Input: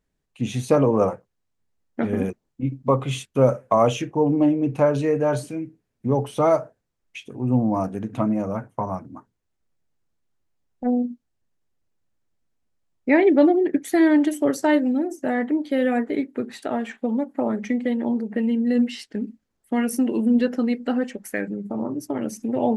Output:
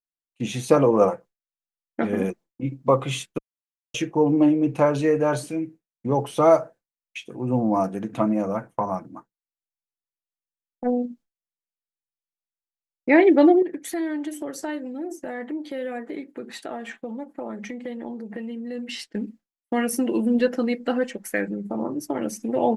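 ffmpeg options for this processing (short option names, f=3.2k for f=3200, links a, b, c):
-filter_complex "[0:a]asettb=1/sr,asplit=3[a][b][c];[a]atrim=end=13.624[d];[b]atrim=start=13.62:end=18.89,asetpts=PTS-STARTPTS,afade=t=in:d=0.004:c=qsin,afade=t=out:st=5.266:d=0.004:c=qsin,acompressor=threshold=-33dB:ratio=2.5:attack=3.2:release=140:knee=1:detection=peak[e];[c]atrim=start=18.886[f];[d][e]acrossfade=d=0.004:c1=hsin:c2=qsin[g];[g][f]acrossfade=d=0.004:c1=qsin:c2=hsin,asplit=3[h][i][j];[h]atrim=end=3.38,asetpts=PTS-STARTPTS,afade=t=out:st=3.376:d=0.004:c=hsin[k];[i]atrim=start=3.38:end=3.94,asetpts=PTS-STARTPTS,volume=0[l];[j]atrim=start=3.94,asetpts=PTS-STARTPTS,afade=t=in:d=0.004:c=hsin[m];[k][l][m]concat=n=3:v=0:a=1,agate=range=-33dB:threshold=-39dB:ratio=3:detection=peak,equalizer=f=71:t=o:w=2.2:g=-10.5,aecho=1:1:5.9:0.32,volume=2dB"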